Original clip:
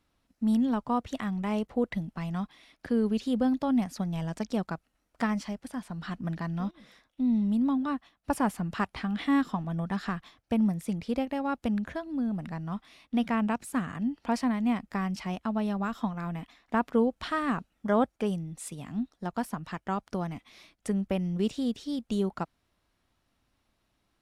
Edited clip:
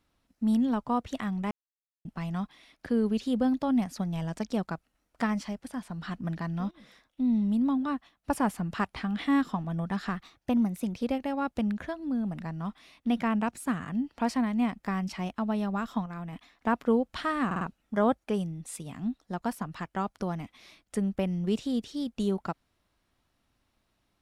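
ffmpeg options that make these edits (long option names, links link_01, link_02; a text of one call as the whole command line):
ffmpeg -i in.wav -filter_complex "[0:a]asplit=10[link_01][link_02][link_03][link_04][link_05][link_06][link_07][link_08][link_09][link_10];[link_01]atrim=end=1.51,asetpts=PTS-STARTPTS,afade=type=out:start_time=1.506:duration=0.004:curve=hsin[link_11];[link_02]atrim=start=1.51:end=2.05,asetpts=PTS-STARTPTS,volume=0[link_12];[link_03]atrim=start=2.05:end=10.154,asetpts=PTS-STARTPTS,afade=type=in:duration=0.004:curve=hsin[link_13];[link_04]atrim=start=10.15:end=11.1,asetpts=PTS-STARTPTS,asetrate=47628,aresample=44100[link_14];[link_05]atrim=start=11.096:end=16.132[link_15];[link_06]atrim=start=16.128:end=16.402,asetpts=PTS-STARTPTS,volume=-4dB[link_16];[link_07]atrim=start=16.398:end=17.582[link_17];[link_08]atrim=start=17.528:end=17.582[link_18];[link_09]atrim=start=17.528:end=17.582[link_19];[link_10]atrim=start=17.528[link_20];[link_11][link_12][link_13]concat=n=3:v=0:a=1[link_21];[link_21][link_14]acrossfade=duration=0.004:curve1=hsin:curve2=hsin[link_22];[link_22][link_15]acrossfade=duration=0.004:curve1=hsin:curve2=hsin[link_23];[link_23][link_16]acrossfade=duration=0.004:curve1=hsin:curve2=hsin[link_24];[link_24][link_17]acrossfade=duration=0.004:curve1=hsin:curve2=hsin[link_25];[link_25][link_18]acrossfade=duration=0.004:curve1=hsin:curve2=hsin[link_26];[link_26][link_19]acrossfade=duration=0.004:curve1=hsin:curve2=hsin[link_27];[link_27][link_20]acrossfade=duration=0.004:curve1=hsin:curve2=hsin" out.wav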